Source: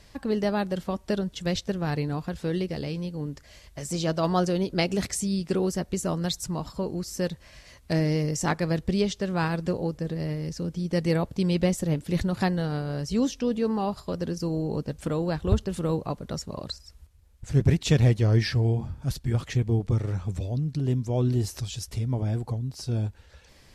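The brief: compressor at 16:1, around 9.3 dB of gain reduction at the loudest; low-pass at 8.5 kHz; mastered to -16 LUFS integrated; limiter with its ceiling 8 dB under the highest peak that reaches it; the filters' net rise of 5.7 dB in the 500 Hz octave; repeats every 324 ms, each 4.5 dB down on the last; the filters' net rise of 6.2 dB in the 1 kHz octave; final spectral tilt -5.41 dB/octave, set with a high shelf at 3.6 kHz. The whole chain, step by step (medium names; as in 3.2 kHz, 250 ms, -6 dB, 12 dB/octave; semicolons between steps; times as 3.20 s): low-pass 8.5 kHz; peaking EQ 500 Hz +5.5 dB; peaking EQ 1 kHz +5.5 dB; treble shelf 3.6 kHz +8 dB; compression 16:1, threshold -23 dBFS; peak limiter -21.5 dBFS; feedback delay 324 ms, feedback 60%, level -4.5 dB; trim +13.5 dB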